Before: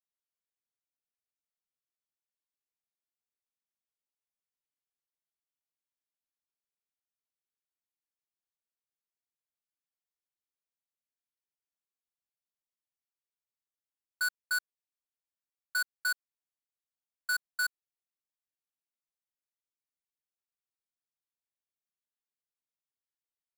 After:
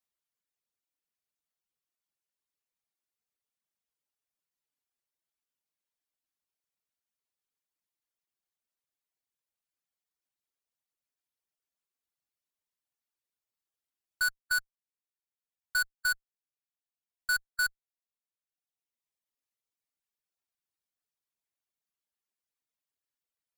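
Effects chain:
reverb reduction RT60 1.5 s
in parallel at −3.5 dB: asymmetric clip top −41 dBFS, bottom −30 dBFS

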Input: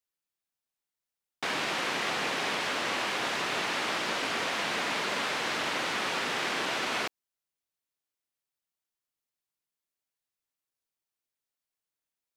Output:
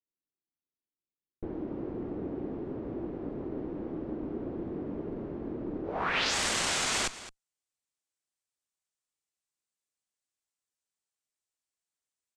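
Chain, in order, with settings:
harmonic generator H 8 −9 dB, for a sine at −17 dBFS
single-tap delay 215 ms −15.5 dB
low-pass filter sweep 330 Hz → 8,100 Hz, 0:05.84–0:06.35
level −4 dB

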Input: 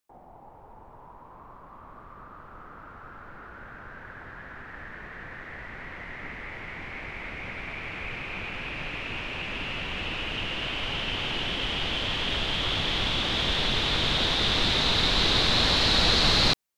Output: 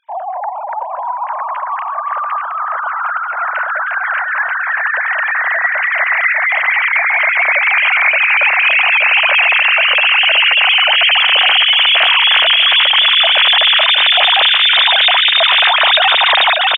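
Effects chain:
three sine waves on the formant tracks
repeating echo 592 ms, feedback 22%, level −10 dB
boost into a limiter +22.5 dB
level −2 dB

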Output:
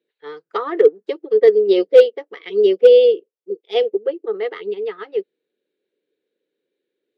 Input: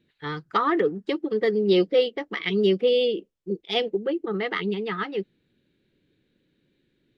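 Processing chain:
high-pass with resonance 450 Hz, resonance Q 4.2
hard clipping −3.5 dBFS, distortion −28 dB
expander for the loud parts 1.5 to 1, over −31 dBFS
level +2 dB

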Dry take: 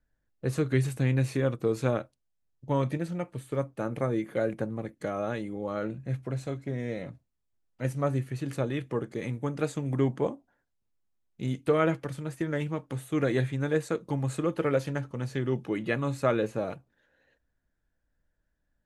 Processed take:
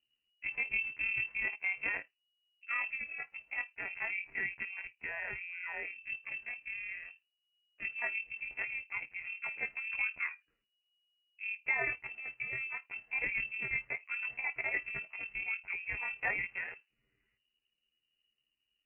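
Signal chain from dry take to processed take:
pitch shift by two crossfaded delay taps +9.5 semitones
voice inversion scrambler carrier 2,900 Hz
level −7.5 dB

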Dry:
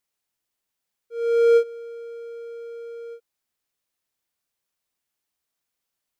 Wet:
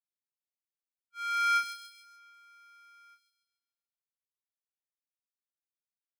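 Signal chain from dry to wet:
brick-wall band-stop 310–960 Hz
downward expander −46 dBFS
delay with a high-pass on its return 144 ms, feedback 45%, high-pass 3,700 Hz, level −4 dB
level +7 dB

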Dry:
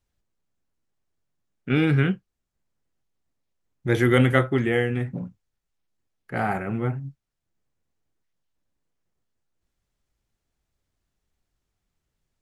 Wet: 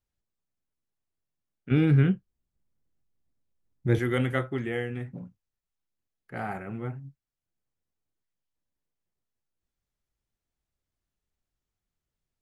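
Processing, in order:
0:01.71–0:03.99: low-shelf EQ 400 Hz +10.5 dB
level −8.5 dB

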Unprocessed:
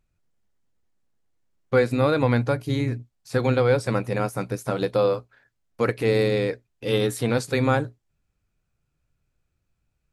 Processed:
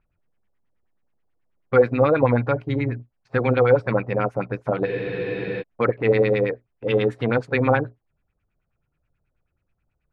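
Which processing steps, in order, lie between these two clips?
auto-filter low-pass sine 9.3 Hz 550–2,700 Hz
frozen spectrum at 0:04.88, 0.72 s

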